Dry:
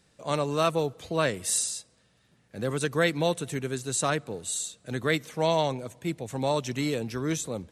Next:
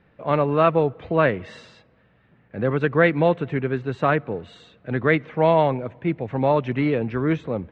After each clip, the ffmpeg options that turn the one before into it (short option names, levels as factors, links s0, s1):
-af "lowpass=f=2400:w=0.5412,lowpass=f=2400:w=1.3066,volume=2.37"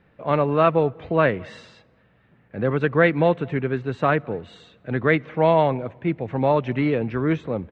-filter_complex "[0:a]asplit=2[s0][s1];[s1]adelay=209.9,volume=0.0398,highshelf=f=4000:g=-4.72[s2];[s0][s2]amix=inputs=2:normalize=0"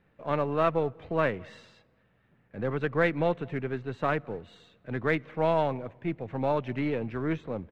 -af "aeval=exprs='if(lt(val(0),0),0.708*val(0),val(0))':c=same,volume=0.473"